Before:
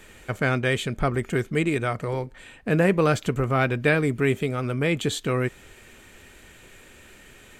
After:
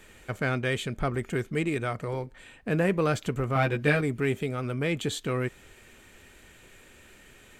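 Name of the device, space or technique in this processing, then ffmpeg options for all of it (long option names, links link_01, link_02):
parallel distortion: -filter_complex "[0:a]asplit=2[link_01][link_02];[link_02]asoftclip=type=hard:threshold=-22dB,volume=-12.5dB[link_03];[link_01][link_03]amix=inputs=2:normalize=0,asettb=1/sr,asplit=3[link_04][link_05][link_06];[link_04]atrim=end=3.544[link_07];[link_05]atrim=start=3.54:end=4.01,asetpts=PTS-STARTPTS,afade=type=in:duration=0.004:curve=qsin,afade=type=out:start_time=0.466:duration=0.004:curve=qsin,asplit=2[link_08][link_09];[link_09]adelay=14,volume=-2dB[link_10];[link_08][link_10]amix=inputs=2:normalize=0,atrim=end_sample=20727[link_11];[link_06]atrim=start=4.006[link_12];[link_07][link_11]acrossfade=duration=0.004:curve1=hsin:curve2=qsin[link_13];[link_13][link_12]acrossfade=duration=0.004:curve1=qsin:curve2=hsin,volume=-6dB"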